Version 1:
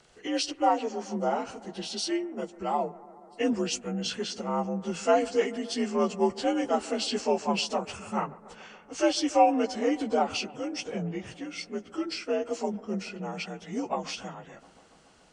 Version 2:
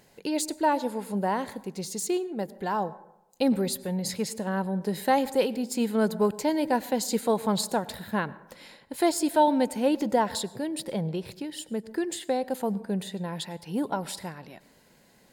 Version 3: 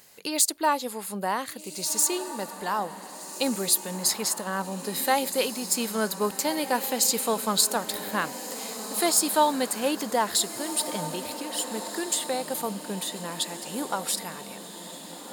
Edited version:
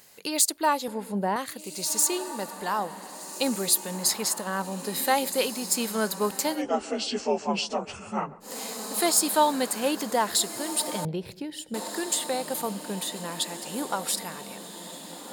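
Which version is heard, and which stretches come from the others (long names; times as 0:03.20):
3
0:00.88–0:01.36: punch in from 2
0:06.55–0:08.48: punch in from 1, crossfade 0.16 s
0:11.05–0:11.74: punch in from 2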